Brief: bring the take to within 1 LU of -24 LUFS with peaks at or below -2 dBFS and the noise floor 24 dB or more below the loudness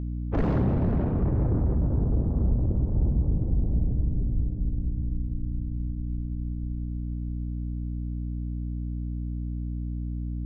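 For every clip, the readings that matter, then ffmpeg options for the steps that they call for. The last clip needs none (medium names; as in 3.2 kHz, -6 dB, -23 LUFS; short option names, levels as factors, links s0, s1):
hum 60 Hz; highest harmonic 300 Hz; hum level -28 dBFS; loudness -29.0 LUFS; peak level -15.0 dBFS; loudness target -24.0 LUFS
-> -af "bandreject=f=60:t=h:w=6,bandreject=f=120:t=h:w=6,bandreject=f=180:t=h:w=6,bandreject=f=240:t=h:w=6,bandreject=f=300:t=h:w=6"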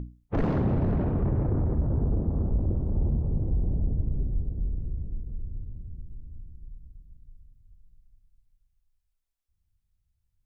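hum not found; loudness -29.0 LUFS; peak level -16.0 dBFS; loudness target -24.0 LUFS
-> -af "volume=1.78"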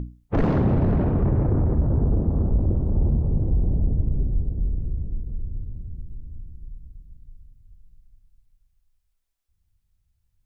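loudness -24.0 LUFS; peak level -11.0 dBFS; noise floor -71 dBFS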